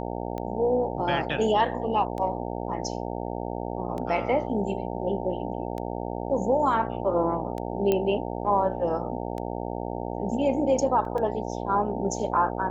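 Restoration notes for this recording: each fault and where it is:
mains buzz 60 Hz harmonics 15 −32 dBFS
scratch tick 33 1/3 rpm −22 dBFS
0:07.92: click −12 dBFS
0:11.05: drop-out 2.4 ms

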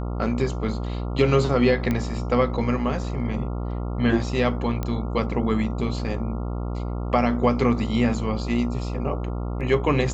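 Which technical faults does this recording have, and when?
mains buzz 60 Hz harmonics 23 −28 dBFS
0:01.91: click −12 dBFS
0:04.83: click −14 dBFS

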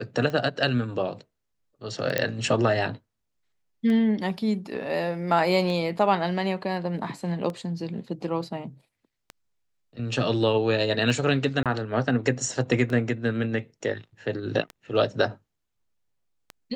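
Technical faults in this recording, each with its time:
scratch tick 33 1/3 rpm −21 dBFS
0:02.18: click −8 dBFS
0:11.63–0:11.66: drop-out 27 ms

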